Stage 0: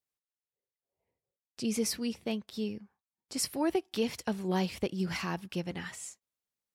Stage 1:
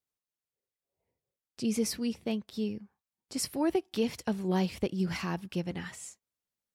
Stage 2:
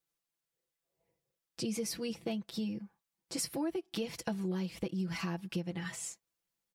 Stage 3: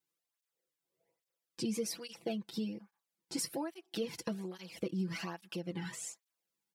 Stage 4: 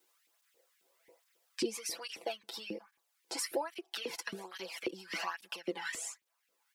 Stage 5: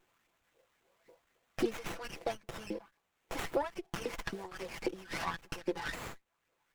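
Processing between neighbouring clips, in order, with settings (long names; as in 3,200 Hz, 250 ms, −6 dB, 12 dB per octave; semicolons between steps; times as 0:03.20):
low-shelf EQ 470 Hz +4.5 dB; level −1.5 dB
comb filter 6 ms, depth 88%; downward compressor 6 to 1, threshold −34 dBFS, peak gain reduction 14 dB; level +1 dB
through-zero flanger with one copy inverted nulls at 1.2 Hz, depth 1.8 ms; level +1.5 dB
auto-filter high-pass saw up 3.7 Hz 310–2,500 Hz; multiband upward and downward compressor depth 40%; level +2.5 dB
windowed peak hold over 9 samples; level +2.5 dB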